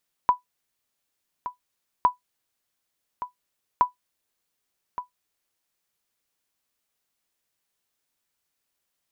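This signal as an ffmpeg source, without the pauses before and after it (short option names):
-f lavfi -i "aevalsrc='0.355*(sin(2*PI*990*mod(t,1.76))*exp(-6.91*mod(t,1.76)/0.13)+0.224*sin(2*PI*990*max(mod(t,1.76)-1.17,0))*exp(-6.91*max(mod(t,1.76)-1.17,0)/0.13))':d=5.28:s=44100"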